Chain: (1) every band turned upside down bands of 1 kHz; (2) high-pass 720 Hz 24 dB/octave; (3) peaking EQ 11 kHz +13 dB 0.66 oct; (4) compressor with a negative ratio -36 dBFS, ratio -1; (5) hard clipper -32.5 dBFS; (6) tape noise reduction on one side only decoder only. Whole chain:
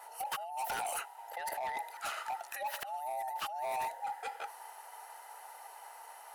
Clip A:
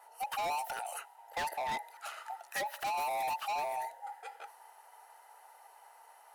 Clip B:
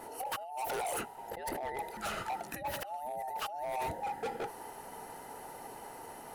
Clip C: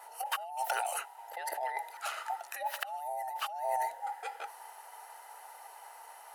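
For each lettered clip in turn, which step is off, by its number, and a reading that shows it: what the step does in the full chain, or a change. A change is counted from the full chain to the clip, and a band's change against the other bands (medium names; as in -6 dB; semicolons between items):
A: 4, momentary loudness spread change +9 LU; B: 2, 500 Hz band +5.0 dB; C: 5, distortion -10 dB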